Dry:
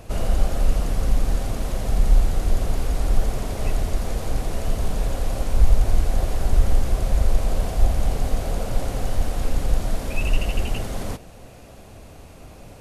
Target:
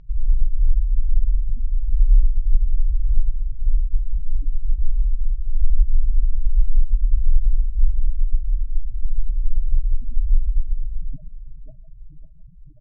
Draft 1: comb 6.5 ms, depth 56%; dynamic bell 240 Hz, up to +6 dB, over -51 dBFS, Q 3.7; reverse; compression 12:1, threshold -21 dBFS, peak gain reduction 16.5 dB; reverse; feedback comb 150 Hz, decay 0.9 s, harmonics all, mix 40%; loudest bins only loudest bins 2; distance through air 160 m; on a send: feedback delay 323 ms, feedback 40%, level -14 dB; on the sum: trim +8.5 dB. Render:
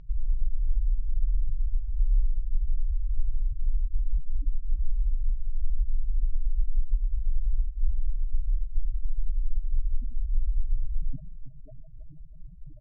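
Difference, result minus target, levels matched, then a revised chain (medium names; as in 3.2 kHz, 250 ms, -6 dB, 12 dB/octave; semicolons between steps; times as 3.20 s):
compression: peak gain reduction +10 dB; echo 226 ms early
comb 6.5 ms, depth 56%; dynamic bell 240 Hz, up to +6 dB, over -51 dBFS, Q 3.7; reverse; compression 12:1, threshold -10 dBFS, peak gain reduction 6.5 dB; reverse; feedback comb 150 Hz, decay 0.9 s, harmonics all, mix 40%; loudest bins only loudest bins 2; distance through air 160 m; on a send: feedback delay 549 ms, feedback 40%, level -14 dB; on the sum: trim +8.5 dB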